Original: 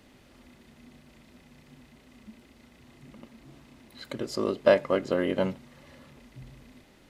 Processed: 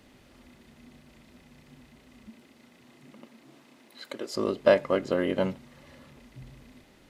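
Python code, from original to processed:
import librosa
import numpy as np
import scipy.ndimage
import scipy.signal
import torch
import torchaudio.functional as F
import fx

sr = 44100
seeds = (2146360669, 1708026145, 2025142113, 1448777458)

y = fx.highpass(x, sr, hz=fx.line((2.29, 120.0), (4.34, 370.0)), slope=12, at=(2.29, 4.34), fade=0.02)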